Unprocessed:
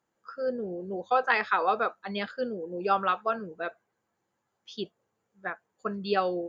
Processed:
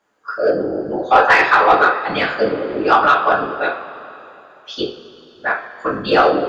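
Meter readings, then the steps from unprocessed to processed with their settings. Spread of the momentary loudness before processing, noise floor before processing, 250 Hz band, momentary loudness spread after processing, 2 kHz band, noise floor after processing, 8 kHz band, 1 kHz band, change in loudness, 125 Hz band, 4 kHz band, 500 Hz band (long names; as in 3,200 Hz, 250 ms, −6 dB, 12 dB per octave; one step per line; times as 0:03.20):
14 LU, −80 dBFS, +12.0 dB, 15 LU, +15.5 dB, −46 dBFS, can't be measured, +14.0 dB, +14.0 dB, +10.0 dB, +14.0 dB, +13.5 dB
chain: random phases in short frames
coupled-rooms reverb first 0.38 s, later 3.2 s, from −18 dB, DRR −2 dB
mid-hump overdrive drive 13 dB, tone 3,400 Hz, clips at −6.5 dBFS
level +5.5 dB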